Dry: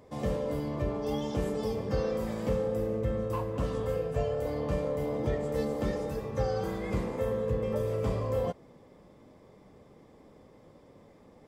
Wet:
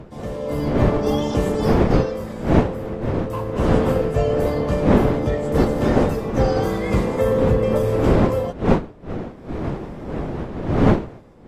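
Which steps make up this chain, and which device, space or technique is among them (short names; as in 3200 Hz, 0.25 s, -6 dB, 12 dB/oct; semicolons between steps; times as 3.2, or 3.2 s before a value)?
smartphone video outdoors (wind noise 370 Hz -27 dBFS; AGC gain up to 13.5 dB; gain -1 dB; AAC 48 kbps 32000 Hz)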